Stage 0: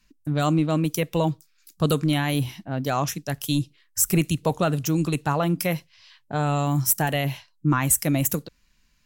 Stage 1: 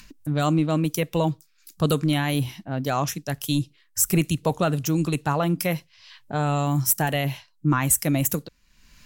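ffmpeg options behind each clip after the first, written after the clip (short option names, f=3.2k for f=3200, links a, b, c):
-af "acompressor=mode=upward:threshold=-36dB:ratio=2.5"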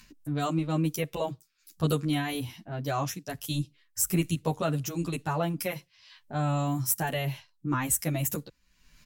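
-filter_complex "[0:a]asplit=2[a][b];[b]adelay=10,afreqshift=-1.1[c];[a][c]amix=inputs=2:normalize=1,volume=-3dB"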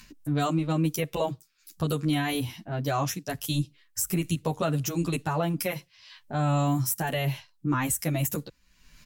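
-af "alimiter=limit=-21dB:level=0:latency=1:release=144,volume=4dB"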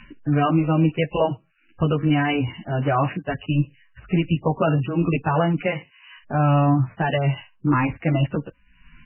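-af "volume=7.5dB" -ar 8000 -c:a libmp3lame -b:a 8k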